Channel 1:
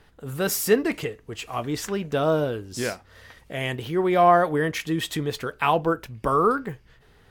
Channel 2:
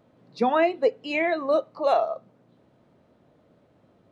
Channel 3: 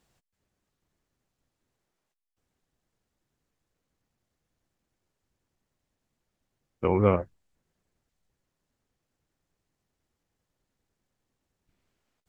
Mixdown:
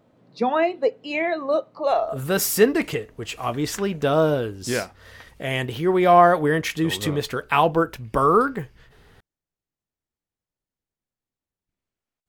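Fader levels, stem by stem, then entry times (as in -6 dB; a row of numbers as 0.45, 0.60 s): +3.0, +0.5, -11.5 dB; 1.90, 0.00, 0.00 s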